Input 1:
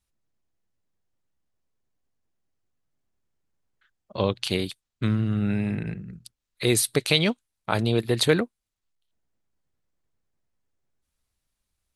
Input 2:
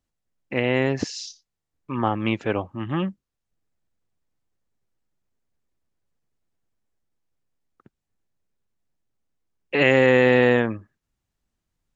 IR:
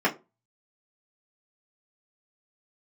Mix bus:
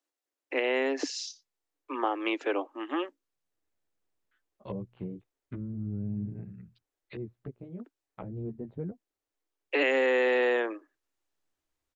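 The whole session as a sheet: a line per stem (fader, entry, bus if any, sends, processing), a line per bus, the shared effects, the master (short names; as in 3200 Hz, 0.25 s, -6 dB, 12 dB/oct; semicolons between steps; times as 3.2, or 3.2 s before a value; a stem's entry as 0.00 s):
-6.5 dB, 0.50 s, no send, LPF 3200 Hz 24 dB/oct; treble ducked by the level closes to 350 Hz, closed at -24 dBFS; chorus voices 2, 0.34 Hz, delay 13 ms, depth 3.7 ms; auto duck -8 dB, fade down 1.15 s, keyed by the second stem
-2.5 dB, 0.00 s, no send, steep high-pass 270 Hz 96 dB/oct; compressor 2.5:1, threshold -22 dBFS, peak gain reduction 6 dB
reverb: off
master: dry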